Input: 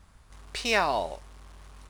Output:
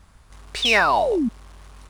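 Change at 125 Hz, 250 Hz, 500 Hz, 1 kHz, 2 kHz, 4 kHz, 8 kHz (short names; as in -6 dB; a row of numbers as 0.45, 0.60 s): +5.0, +14.5, +8.0, +8.0, +9.5, +10.0, +4.5 dB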